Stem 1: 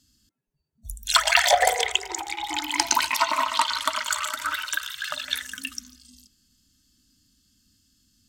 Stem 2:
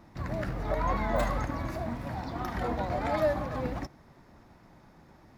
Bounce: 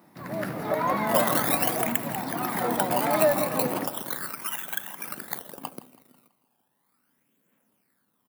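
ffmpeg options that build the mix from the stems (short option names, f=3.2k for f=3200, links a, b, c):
-filter_complex "[0:a]acrusher=samples=18:mix=1:aa=0.000001:lfo=1:lforange=18:lforate=0.37,aphaser=in_gain=1:out_gain=1:delay=1.3:decay=0.5:speed=0.53:type=triangular,volume=-10dB,asplit=2[a][b];[b]volume=-18.5dB[c];[1:a]dynaudnorm=f=220:g=3:m=6dB,volume=-1dB,asplit=2[d][e];[e]volume=-14dB[f];[c][f]amix=inputs=2:normalize=0,aecho=0:1:164|328|492|656|820|984|1148:1|0.47|0.221|0.104|0.0488|0.0229|0.0108[g];[a][d][g]amix=inputs=3:normalize=0,highpass=f=150:w=0.5412,highpass=f=150:w=1.3066,aexciter=amount=5.2:drive=4.5:freq=8.9k"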